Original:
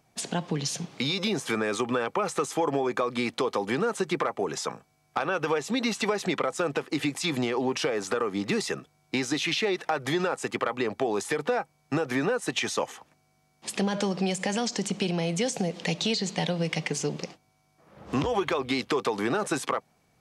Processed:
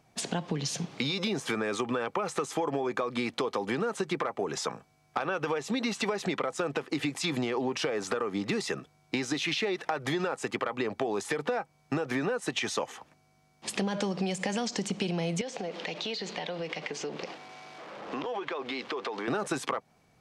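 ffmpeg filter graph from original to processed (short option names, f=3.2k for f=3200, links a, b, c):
-filter_complex "[0:a]asettb=1/sr,asplit=3[a][b][c];[a]atrim=end=15.414[d];[b]atrim=start=15.41:end=19.28,asetpts=PTS-STARTPTS,afade=t=in:d=0.004:c=qsin,afade=t=out:st=3.866:d=0.004:c=qsin,aeval=exprs='val(0)+0.5*0.00944*sgn(val(0))':c=same,highpass=340,lowpass=4.3k,acompressor=threshold=-34dB:ratio=3:attack=3.2:release=140:knee=1:detection=peak[e];[c]atrim=start=19.276[f];[d][e]acrossfade=d=0.004:c1=hsin:c2=qsin[g];[g][f]acrossfade=d=0.004:c1=qsin:c2=hsin,highshelf=f=8.6k:g=-7.5,acompressor=threshold=-31dB:ratio=2.5,volume=2dB"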